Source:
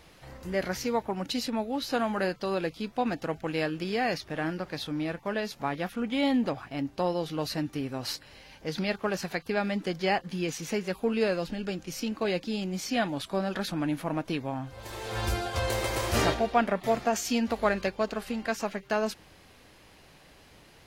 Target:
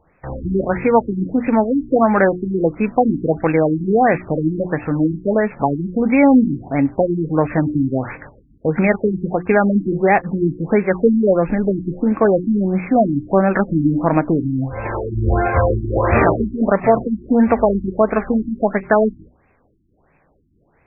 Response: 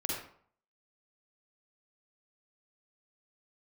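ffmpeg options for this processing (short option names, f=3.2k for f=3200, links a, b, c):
-filter_complex "[0:a]agate=range=-21dB:threshold=-48dB:ratio=16:detection=peak,bandreject=f=60:t=h:w=6,bandreject=f=120:t=h:w=6,bandreject=f=180:t=h:w=6,bandreject=f=240:t=h:w=6,bandreject=f=300:t=h:w=6,bandreject=f=360:t=h:w=6,asplit=2[a][b];[b]acompressor=threshold=-40dB:ratio=8,volume=-0.5dB[c];[a][c]amix=inputs=2:normalize=0,alimiter=level_in=15dB:limit=-1dB:release=50:level=0:latency=1,afftfilt=real='re*lt(b*sr/1024,340*pow(2700/340,0.5+0.5*sin(2*PI*1.5*pts/sr)))':imag='im*lt(b*sr/1024,340*pow(2700/340,0.5+0.5*sin(2*PI*1.5*pts/sr)))':win_size=1024:overlap=0.75,volume=-1dB"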